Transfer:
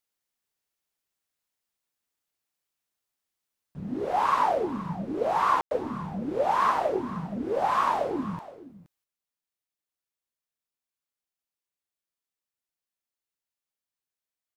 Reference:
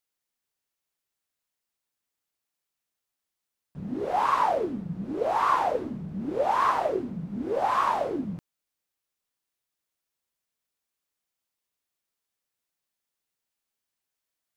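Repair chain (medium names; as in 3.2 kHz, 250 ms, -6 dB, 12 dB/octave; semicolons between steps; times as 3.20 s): room tone fill 5.61–5.71 s; inverse comb 471 ms -16.5 dB; gain correction +7.5 dB, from 9.04 s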